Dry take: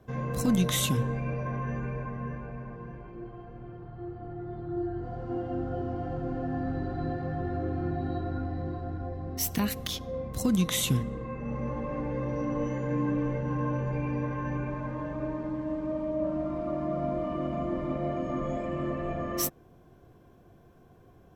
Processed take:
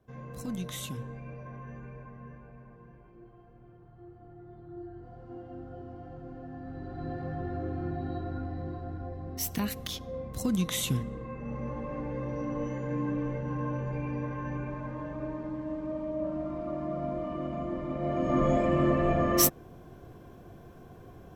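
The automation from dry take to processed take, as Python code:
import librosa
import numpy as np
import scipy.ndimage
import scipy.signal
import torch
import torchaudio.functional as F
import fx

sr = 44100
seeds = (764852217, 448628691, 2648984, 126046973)

y = fx.gain(x, sr, db=fx.line((6.61, -11.0), (7.2, -3.0), (17.92, -3.0), (18.41, 7.0)))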